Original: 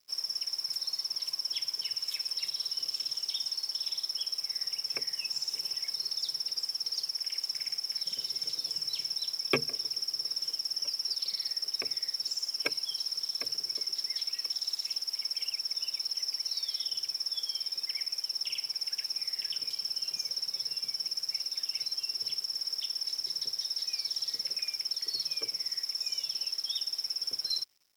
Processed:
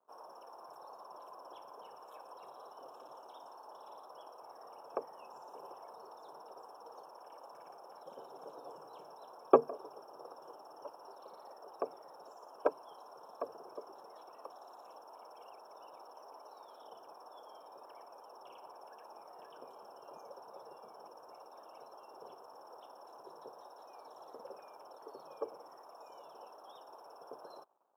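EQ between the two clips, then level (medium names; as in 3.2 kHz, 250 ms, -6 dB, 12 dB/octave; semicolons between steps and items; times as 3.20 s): high-pass 720 Hz 12 dB/octave; inverse Chebyshev low-pass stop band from 1.9 kHz, stop band 40 dB; +17.0 dB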